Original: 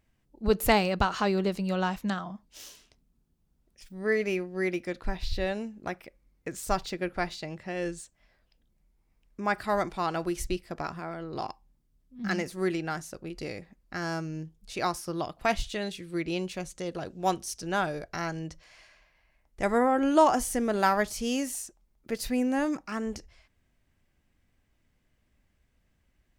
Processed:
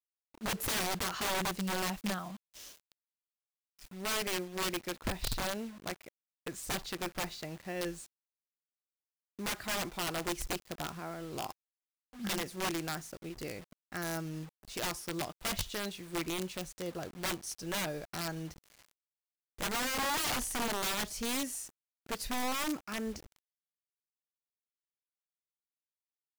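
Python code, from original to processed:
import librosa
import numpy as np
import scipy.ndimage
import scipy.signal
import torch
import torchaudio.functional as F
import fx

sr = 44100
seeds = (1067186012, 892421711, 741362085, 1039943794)

y = fx.quant_dither(x, sr, seeds[0], bits=8, dither='none')
y = (np.mod(10.0 ** (23.5 / 20.0) * y + 1.0, 2.0) - 1.0) / 10.0 ** (23.5 / 20.0)
y = F.gain(torch.from_numpy(y), -4.5).numpy()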